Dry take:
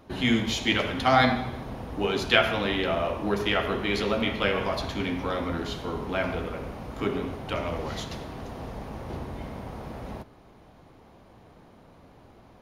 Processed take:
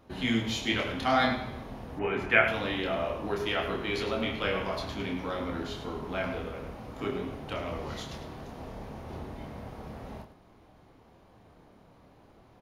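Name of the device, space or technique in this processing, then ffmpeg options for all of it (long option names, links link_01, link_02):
slapback doubling: -filter_complex "[0:a]asplit=3[link_01][link_02][link_03];[link_02]adelay=27,volume=-4.5dB[link_04];[link_03]adelay=104,volume=-11dB[link_05];[link_01][link_04][link_05]amix=inputs=3:normalize=0,asettb=1/sr,asplit=3[link_06][link_07][link_08];[link_06]atrim=end=1.994[link_09];[link_07]atrim=start=1.99:end=2.48,asetpts=PTS-STARTPTS,afade=type=in:duration=0.004:curve=qsin,afade=type=out:start_time=0.486:duration=0.004:curve=qsin,highshelf=frequency=2900:width_type=q:width=3:gain=-11[link_10];[link_08]atrim=start=2.476[link_11];[link_09][link_10]acrossfade=duration=0.004:curve1=hsin:curve2=qsin[link_12];[link_12][link_11]acrossfade=duration=0.004:curve1=qsin:curve2=hsin,volume=-6dB"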